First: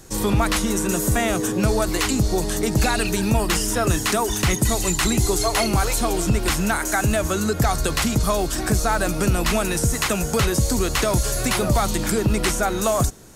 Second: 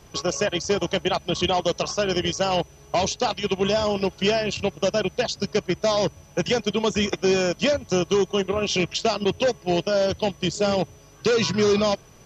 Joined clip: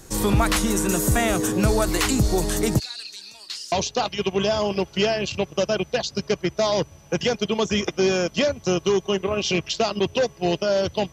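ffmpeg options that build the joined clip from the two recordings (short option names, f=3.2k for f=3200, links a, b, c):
-filter_complex "[0:a]asplit=3[a][b][c];[a]afade=t=out:st=2.78:d=0.02[d];[b]bandpass=f=4.4k:t=q:w=4.9:csg=0,afade=t=in:st=2.78:d=0.02,afade=t=out:st=3.72:d=0.02[e];[c]afade=t=in:st=3.72:d=0.02[f];[d][e][f]amix=inputs=3:normalize=0,apad=whole_dur=11.12,atrim=end=11.12,atrim=end=3.722[g];[1:a]atrim=start=2.968:end=10.37[h];[g][h]acrossfade=d=0.004:c1=hsin:c2=hsin"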